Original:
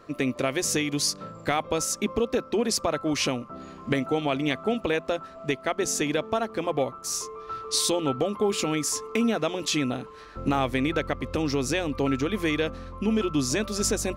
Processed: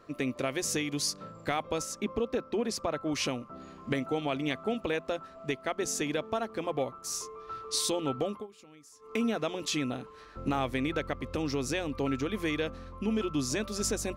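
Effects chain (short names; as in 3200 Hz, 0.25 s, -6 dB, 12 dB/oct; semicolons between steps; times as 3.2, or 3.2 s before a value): 1.82–3.13 high shelf 4400 Hz -7 dB; 8.3–9.16 dip -22.5 dB, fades 0.17 s; gain -5.5 dB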